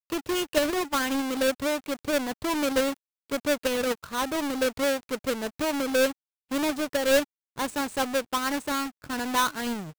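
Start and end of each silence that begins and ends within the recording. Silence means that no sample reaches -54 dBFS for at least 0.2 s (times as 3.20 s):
2.97–3.30 s
6.13–6.50 s
7.24–7.56 s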